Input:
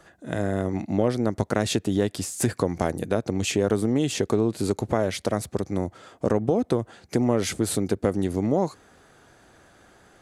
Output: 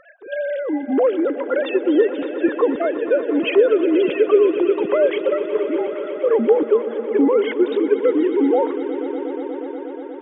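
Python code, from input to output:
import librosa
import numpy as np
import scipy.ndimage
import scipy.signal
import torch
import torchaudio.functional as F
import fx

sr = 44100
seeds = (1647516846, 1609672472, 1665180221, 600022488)

y = fx.sine_speech(x, sr)
y = fx.echo_swell(y, sr, ms=120, loudest=5, wet_db=-16)
y = y * librosa.db_to_amplitude(6.0)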